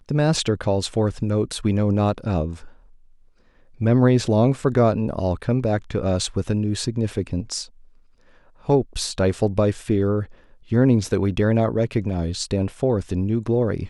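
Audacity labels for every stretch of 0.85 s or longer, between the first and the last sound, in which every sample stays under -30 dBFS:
2.640000	3.810000	silence
7.640000	8.690000	silence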